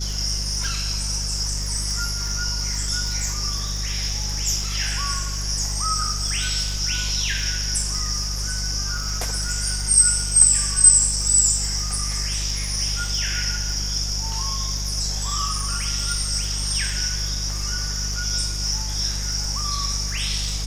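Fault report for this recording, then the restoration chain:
surface crackle 59 per second −29 dBFS
mains hum 50 Hz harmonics 4 −28 dBFS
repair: click removal
hum removal 50 Hz, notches 4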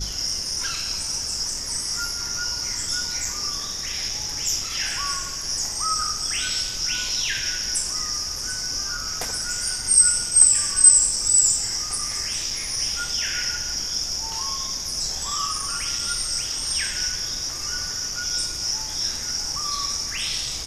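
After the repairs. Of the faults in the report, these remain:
none of them is left

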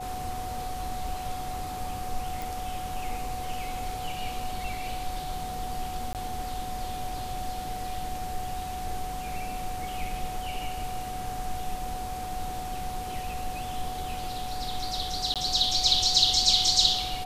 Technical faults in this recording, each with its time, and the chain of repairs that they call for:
whistle 740 Hz −34 dBFS
0:02.42: click
0:06.13–0:06.15: drop-out 18 ms
0:15.34–0:15.36: drop-out 17 ms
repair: click removal
notch filter 740 Hz, Q 30
repair the gap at 0:06.13, 18 ms
repair the gap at 0:15.34, 17 ms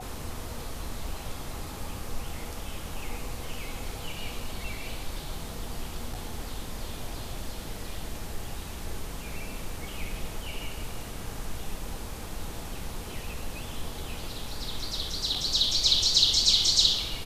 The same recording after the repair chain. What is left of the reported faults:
none of them is left

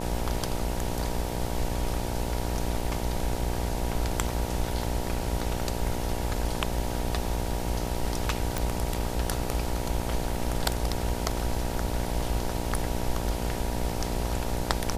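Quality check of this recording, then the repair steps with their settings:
mains buzz 60 Hz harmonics 16 −33 dBFS
0:08.58: click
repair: click removal
hum removal 60 Hz, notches 16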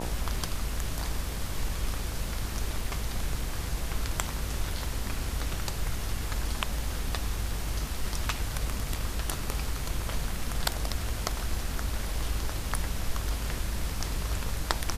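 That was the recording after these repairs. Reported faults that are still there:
none of them is left

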